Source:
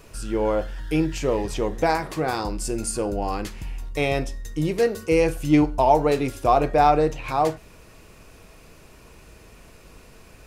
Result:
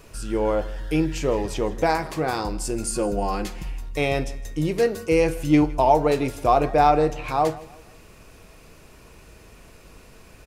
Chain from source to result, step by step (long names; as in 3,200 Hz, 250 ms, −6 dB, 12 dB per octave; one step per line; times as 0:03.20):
0:02.91–0:03.71: comb filter 5.6 ms, depth 58%
repeating echo 160 ms, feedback 38%, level −20 dB